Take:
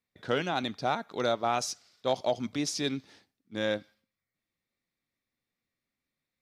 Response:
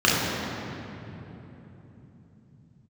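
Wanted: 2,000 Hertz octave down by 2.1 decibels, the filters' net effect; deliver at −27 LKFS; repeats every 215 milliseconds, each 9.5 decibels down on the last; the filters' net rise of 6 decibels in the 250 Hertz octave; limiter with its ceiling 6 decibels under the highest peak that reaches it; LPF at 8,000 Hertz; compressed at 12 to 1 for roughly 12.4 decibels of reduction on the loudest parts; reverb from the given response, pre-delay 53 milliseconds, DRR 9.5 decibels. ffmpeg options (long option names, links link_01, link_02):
-filter_complex "[0:a]lowpass=8000,equalizer=frequency=250:width_type=o:gain=7,equalizer=frequency=2000:width_type=o:gain=-3,acompressor=threshold=-34dB:ratio=12,alimiter=level_in=4.5dB:limit=-24dB:level=0:latency=1,volume=-4.5dB,aecho=1:1:215|430|645|860:0.335|0.111|0.0365|0.012,asplit=2[link_01][link_02];[1:a]atrim=start_sample=2205,adelay=53[link_03];[link_02][link_03]afir=irnorm=-1:irlink=0,volume=-30.5dB[link_04];[link_01][link_04]amix=inputs=2:normalize=0,volume=13.5dB"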